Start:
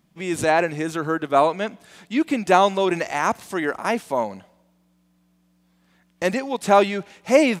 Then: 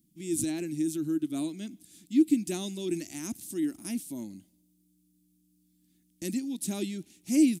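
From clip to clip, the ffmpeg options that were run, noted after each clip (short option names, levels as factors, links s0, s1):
-af "firequalizer=gain_entry='entry(180,0);entry(310,9);entry(460,-22);entry(660,-21);entry(1000,-27);entry(2300,-11);entry(3500,-3);entry(9500,12)':delay=0.05:min_phase=1,volume=0.398"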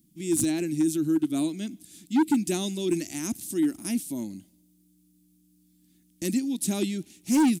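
-af "asoftclip=type=hard:threshold=0.0708,volume=1.88"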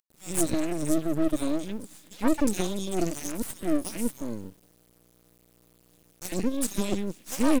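-filter_complex "[0:a]acrossover=split=630|3400[s0][s1][s2];[s1]adelay=60[s3];[s0]adelay=100[s4];[s4][s3][s2]amix=inputs=3:normalize=0,aeval=exprs='max(val(0),0)':c=same,acrusher=bits=7:dc=4:mix=0:aa=0.000001,volume=1.5"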